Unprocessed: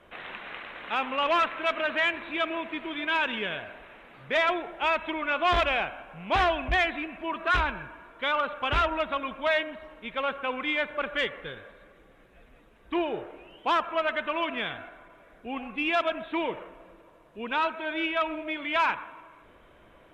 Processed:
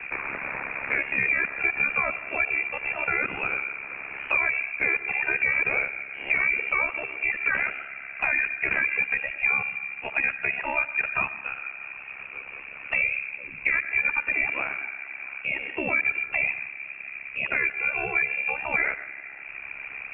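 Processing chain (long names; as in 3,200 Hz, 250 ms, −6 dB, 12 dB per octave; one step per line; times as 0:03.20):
high-pass filter 330 Hz 12 dB per octave
parametric band 630 Hz +12.5 dB 0.76 octaves
brickwall limiter −13.5 dBFS, peak gain reduction 7 dB
ring modulation 34 Hz
on a send at −22.5 dB: convolution reverb RT60 0.35 s, pre-delay 118 ms
on the sum: voice inversion scrambler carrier 3,000 Hz
multiband upward and downward compressor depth 70%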